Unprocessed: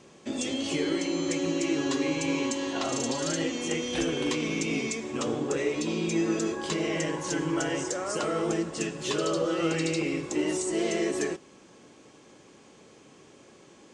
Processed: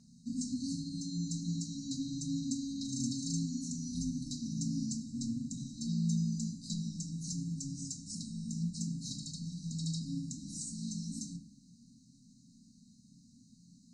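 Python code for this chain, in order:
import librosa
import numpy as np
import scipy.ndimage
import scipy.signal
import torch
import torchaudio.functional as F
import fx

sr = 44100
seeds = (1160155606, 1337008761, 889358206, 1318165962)

y = fx.brickwall_bandstop(x, sr, low_hz=270.0, high_hz=3800.0)
y = fx.high_shelf(y, sr, hz=5100.0, db=-6.5)
y = fx.room_shoebox(y, sr, seeds[0], volume_m3=530.0, walls='furnished', distance_m=1.6)
y = y * 10.0 ** (-4.0 / 20.0)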